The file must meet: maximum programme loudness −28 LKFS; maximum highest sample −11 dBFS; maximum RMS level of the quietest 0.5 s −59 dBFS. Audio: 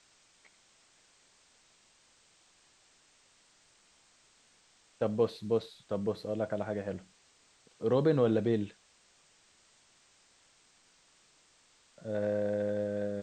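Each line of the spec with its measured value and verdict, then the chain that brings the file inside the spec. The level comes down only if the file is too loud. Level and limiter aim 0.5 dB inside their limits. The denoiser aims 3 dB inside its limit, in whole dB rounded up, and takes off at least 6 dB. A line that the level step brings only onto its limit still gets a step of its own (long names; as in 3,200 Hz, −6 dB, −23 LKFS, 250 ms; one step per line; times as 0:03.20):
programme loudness −32.5 LKFS: in spec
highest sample −15.5 dBFS: in spec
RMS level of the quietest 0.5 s −66 dBFS: in spec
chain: no processing needed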